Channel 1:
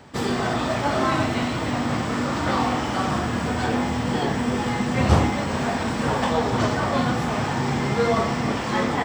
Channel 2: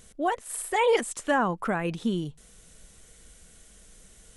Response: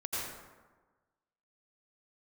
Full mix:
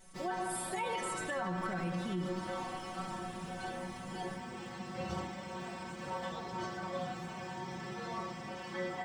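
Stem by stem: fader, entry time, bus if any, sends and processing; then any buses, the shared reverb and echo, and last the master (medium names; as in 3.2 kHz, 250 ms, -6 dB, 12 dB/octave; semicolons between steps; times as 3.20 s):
-6.0 dB, 0.00 s, no send, none
+2.0 dB, 0.00 s, send -9 dB, none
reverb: on, RT60 1.3 s, pre-delay 78 ms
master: inharmonic resonator 180 Hz, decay 0.23 s, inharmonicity 0.002; peak limiter -28 dBFS, peak gain reduction 10.5 dB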